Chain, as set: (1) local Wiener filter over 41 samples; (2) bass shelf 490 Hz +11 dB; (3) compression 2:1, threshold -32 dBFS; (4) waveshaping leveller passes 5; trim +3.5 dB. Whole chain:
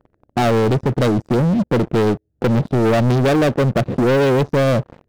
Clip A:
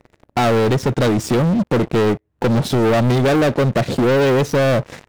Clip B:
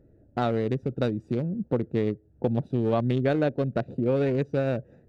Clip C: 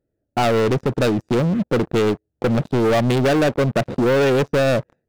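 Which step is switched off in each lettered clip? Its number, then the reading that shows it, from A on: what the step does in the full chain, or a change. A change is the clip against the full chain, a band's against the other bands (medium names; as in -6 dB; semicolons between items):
1, 8 kHz band +4.5 dB; 4, crest factor change +10.0 dB; 2, 125 Hz band -4.0 dB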